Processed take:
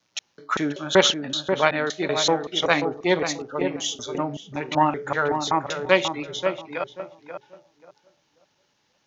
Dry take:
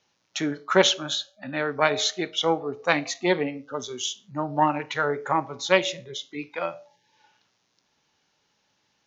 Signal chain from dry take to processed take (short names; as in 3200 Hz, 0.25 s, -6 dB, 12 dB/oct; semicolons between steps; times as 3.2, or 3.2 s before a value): slices in reverse order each 0.19 s, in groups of 2; darkening echo 0.535 s, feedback 25%, low-pass 1200 Hz, level -6 dB; gain +1.5 dB